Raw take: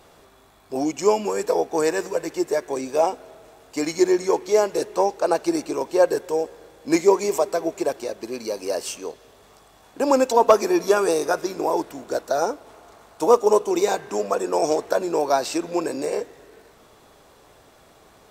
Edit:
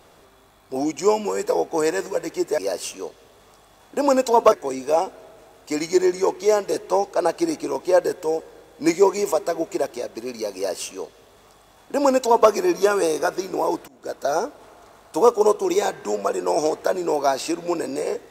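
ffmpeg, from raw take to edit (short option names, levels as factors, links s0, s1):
-filter_complex "[0:a]asplit=4[s0][s1][s2][s3];[s0]atrim=end=2.582[s4];[s1]atrim=start=8.608:end=10.552[s5];[s2]atrim=start=2.578:end=11.94,asetpts=PTS-STARTPTS,afade=t=out:st=9.358:d=0.004:c=hsin:silence=0.0630957[s6];[s3]atrim=start=11.94,asetpts=PTS-STARTPTS,afade=t=in:d=0.41:silence=0.0630957[s7];[s4][s5]acrossfade=d=0.004:c1=hsin:c2=hsin[s8];[s6][s7]concat=n=2:v=0:a=1[s9];[s8][s9]acrossfade=d=0.004:c1=hsin:c2=hsin"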